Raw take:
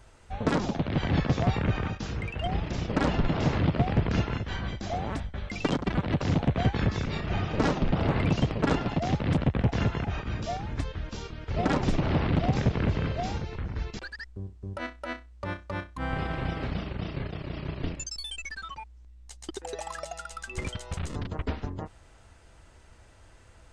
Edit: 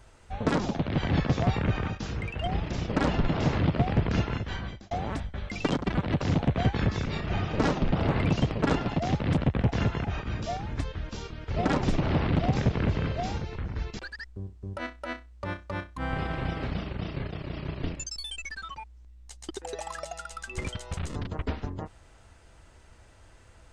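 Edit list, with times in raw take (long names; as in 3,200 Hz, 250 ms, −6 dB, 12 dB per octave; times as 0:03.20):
0:04.40–0:04.91: fade out equal-power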